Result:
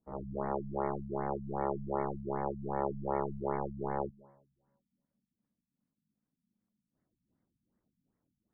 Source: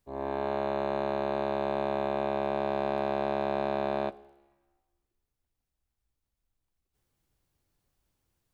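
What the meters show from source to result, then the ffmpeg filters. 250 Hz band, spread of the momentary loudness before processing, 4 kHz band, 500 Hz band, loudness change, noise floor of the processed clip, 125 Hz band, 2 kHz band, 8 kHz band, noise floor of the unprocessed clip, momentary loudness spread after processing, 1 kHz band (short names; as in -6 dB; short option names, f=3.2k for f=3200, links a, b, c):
-4.0 dB, 2 LU, under -35 dB, -7.0 dB, -5.5 dB, under -85 dBFS, +1.5 dB, -11.0 dB, n/a, -85 dBFS, 2 LU, -5.0 dB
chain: -af "aeval=exprs='val(0)*sin(2*PI*210*n/s)':c=same,afftfilt=real='re*lt(b*sr/1024,240*pow(2300/240,0.5+0.5*sin(2*PI*2.6*pts/sr)))':imag='im*lt(b*sr/1024,240*pow(2300/240,0.5+0.5*sin(2*PI*2.6*pts/sr)))':win_size=1024:overlap=0.75"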